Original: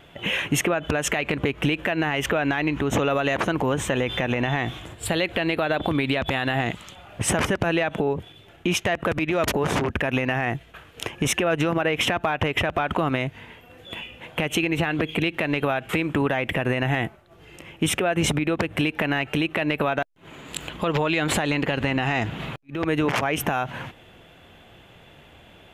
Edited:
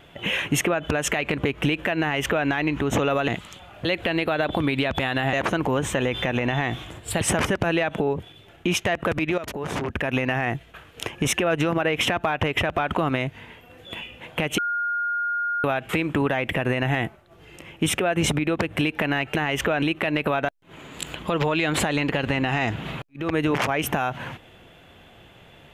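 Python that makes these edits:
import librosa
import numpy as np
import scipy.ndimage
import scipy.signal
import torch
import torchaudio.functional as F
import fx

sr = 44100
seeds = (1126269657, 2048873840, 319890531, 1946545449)

y = fx.edit(x, sr, fx.duplicate(start_s=2.01, length_s=0.46, to_s=19.36),
    fx.swap(start_s=3.28, length_s=1.88, other_s=6.64, other_length_s=0.57),
    fx.fade_in_from(start_s=9.38, length_s=0.81, floor_db=-13.5),
    fx.bleep(start_s=14.58, length_s=1.06, hz=1420.0, db=-22.5), tone=tone)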